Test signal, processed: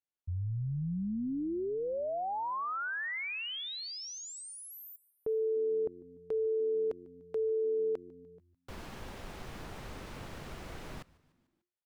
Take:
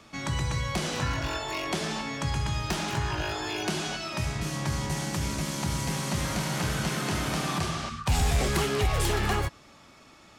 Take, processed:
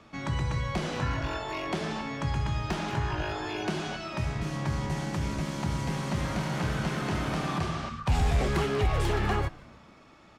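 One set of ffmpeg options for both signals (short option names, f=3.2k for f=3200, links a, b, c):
-filter_complex "[0:a]lowpass=f=2.1k:p=1,asplit=2[a][b];[b]asplit=4[c][d][e][f];[c]adelay=148,afreqshift=-89,volume=-23dB[g];[d]adelay=296,afreqshift=-178,volume=-27.9dB[h];[e]adelay=444,afreqshift=-267,volume=-32.8dB[i];[f]adelay=592,afreqshift=-356,volume=-37.6dB[j];[g][h][i][j]amix=inputs=4:normalize=0[k];[a][k]amix=inputs=2:normalize=0"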